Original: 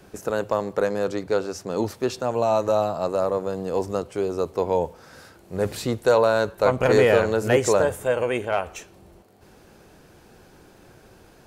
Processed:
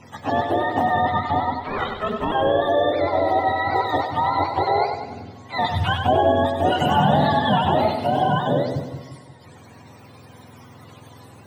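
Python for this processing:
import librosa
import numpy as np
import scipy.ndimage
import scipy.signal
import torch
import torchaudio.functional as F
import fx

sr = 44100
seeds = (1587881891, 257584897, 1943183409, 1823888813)

p1 = fx.octave_mirror(x, sr, pivot_hz=610.0)
p2 = fx.over_compress(p1, sr, threshold_db=-26.0, ratio=-0.5)
p3 = p1 + F.gain(torch.from_numpy(p2), -2.0).numpy()
p4 = fx.ring_mod(p3, sr, carrier_hz=320.0, at=(1.6, 2.32))
y = fx.echo_split(p4, sr, split_hz=350.0, low_ms=178, high_ms=97, feedback_pct=52, wet_db=-6.5)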